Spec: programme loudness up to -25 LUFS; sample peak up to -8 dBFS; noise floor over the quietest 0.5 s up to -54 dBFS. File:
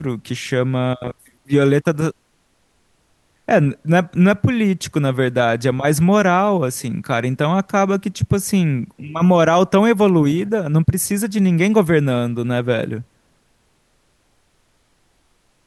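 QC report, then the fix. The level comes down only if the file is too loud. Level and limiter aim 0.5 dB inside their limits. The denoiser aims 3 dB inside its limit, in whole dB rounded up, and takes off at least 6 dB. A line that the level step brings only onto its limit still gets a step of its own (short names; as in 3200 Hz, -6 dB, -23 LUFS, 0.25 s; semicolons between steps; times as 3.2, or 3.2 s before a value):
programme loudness -17.5 LUFS: fail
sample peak -4.0 dBFS: fail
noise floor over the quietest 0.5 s -62 dBFS: OK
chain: gain -8 dB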